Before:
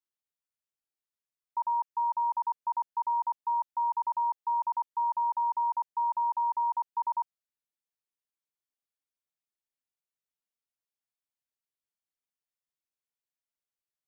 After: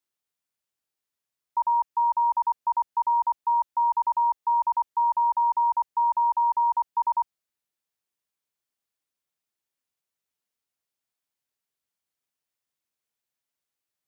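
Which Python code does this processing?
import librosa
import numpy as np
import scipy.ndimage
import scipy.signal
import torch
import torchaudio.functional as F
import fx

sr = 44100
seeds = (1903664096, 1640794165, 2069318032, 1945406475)

y = scipy.signal.sosfilt(scipy.signal.butter(2, 44.0, 'highpass', fs=sr, output='sos'), x)
y = F.gain(torch.from_numpy(y), 6.0).numpy()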